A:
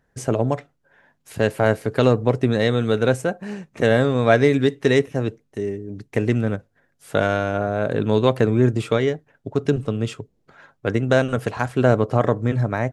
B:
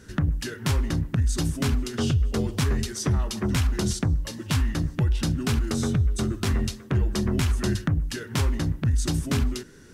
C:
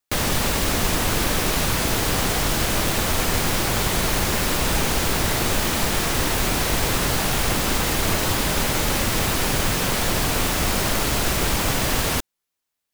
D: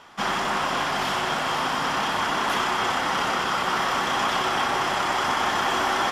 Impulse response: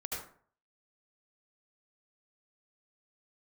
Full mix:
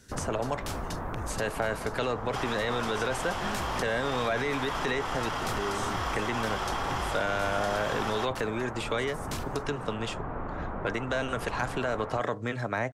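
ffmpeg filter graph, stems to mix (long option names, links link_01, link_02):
-filter_complex "[0:a]highshelf=frequency=5300:gain=-10.5,acrossover=split=180|3000[link_01][link_02][link_03];[link_01]acompressor=threshold=-29dB:ratio=6[link_04];[link_04][link_02][link_03]amix=inputs=3:normalize=0,volume=-1dB,asplit=2[link_05][link_06];[1:a]volume=-10dB[link_07];[2:a]lowpass=frequency=1300:width=0.5412,lowpass=frequency=1300:width=1.3066,volume=-8dB[link_08];[3:a]equalizer=frequency=400:width=0.39:gain=13,adelay=2150,volume=-16.5dB[link_09];[link_06]apad=whole_len=438095[link_10];[link_07][link_10]sidechaincompress=threshold=-27dB:ratio=8:attack=16:release=329[link_11];[link_05][link_11][link_09]amix=inputs=3:normalize=0,crystalizer=i=4:c=0,alimiter=limit=-13dB:level=0:latency=1:release=10,volume=0dB[link_12];[link_08][link_12]amix=inputs=2:normalize=0,highshelf=frequency=7500:gain=-9.5,acrossover=split=680|1900[link_13][link_14][link_15];[link_13]acompressor=threshold=-33dB:ratio=4[link_16];[link_14]acompressor=threshold=-29dB:ratio=4[link_17];[link_15]acompressor=threshold=-37dB:ratio=4[link_18];[link_16][link_17][link_18]amix=inputs=3:normalize=0"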